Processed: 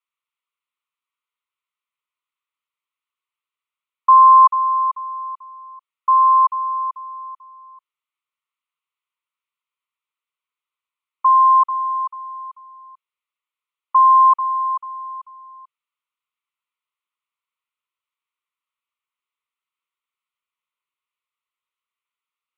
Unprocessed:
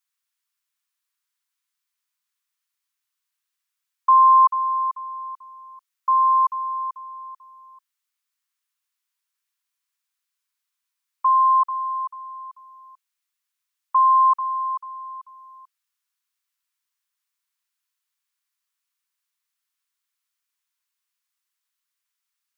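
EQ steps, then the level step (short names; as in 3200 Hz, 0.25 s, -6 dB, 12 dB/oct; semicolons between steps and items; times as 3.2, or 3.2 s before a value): band-pass 1000 Hz, Q 0.58; fixed phaser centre 1100 Hz, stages 8; +4.5 dB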